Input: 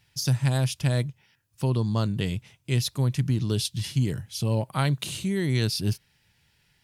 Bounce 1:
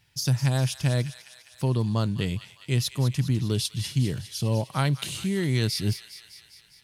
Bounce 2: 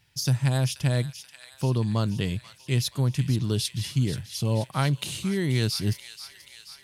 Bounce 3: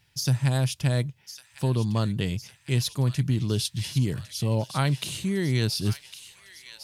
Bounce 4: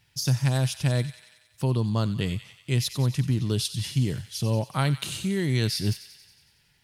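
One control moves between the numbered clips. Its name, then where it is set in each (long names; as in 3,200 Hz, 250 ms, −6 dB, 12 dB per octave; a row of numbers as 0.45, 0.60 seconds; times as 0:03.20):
delay with a high-pass on its return, delay time: 202, 482, 1,105, 92 milliseconds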